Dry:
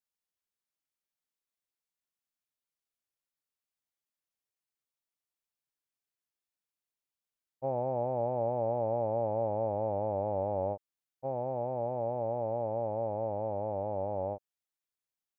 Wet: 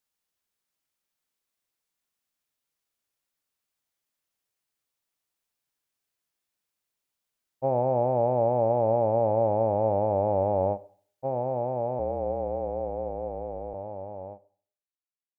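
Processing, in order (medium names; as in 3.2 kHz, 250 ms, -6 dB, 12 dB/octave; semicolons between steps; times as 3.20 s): fade out at the end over 4.93 s; 11.99–13.74 s: frequency shift -38 Hz; Schroeder reverb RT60 0.48 s, combs from 32 ms, DRR 17 dB; trim +7.5 dB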